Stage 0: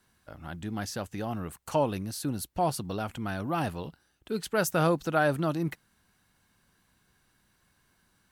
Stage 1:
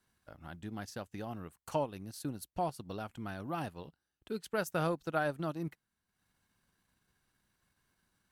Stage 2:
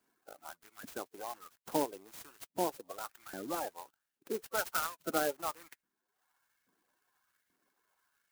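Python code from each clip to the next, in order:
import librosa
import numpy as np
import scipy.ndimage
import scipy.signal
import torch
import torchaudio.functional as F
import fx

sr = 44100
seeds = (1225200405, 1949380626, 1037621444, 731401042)

y1 = fx.transient(x, sr, attack_db=3, sustain_db=-9)
y1 = F.gain(torch.from_numpy(y1), -8.5).numpy()
y2 = fx.spec_quant(y1, sr, step_db=30)
y2 = fx.filter_lfo_highpass(y2, sr, shape='saw_up', hz=1.2, low_hz=210.0, high_hz=2400.0, q=1.6)
y2 = fx.clock_jitter(y2, sr, seeds[0], jitter_ms=0.076)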